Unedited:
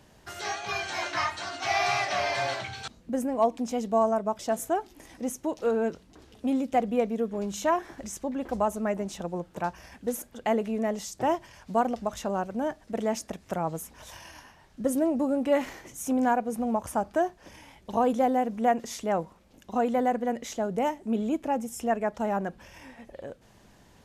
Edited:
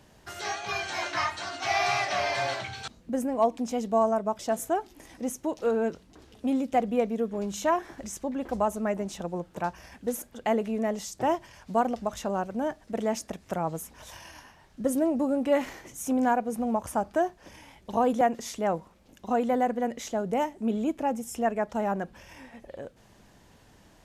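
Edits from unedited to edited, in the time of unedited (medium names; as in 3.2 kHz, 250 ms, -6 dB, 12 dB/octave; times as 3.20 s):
18.21–18.66 s: delete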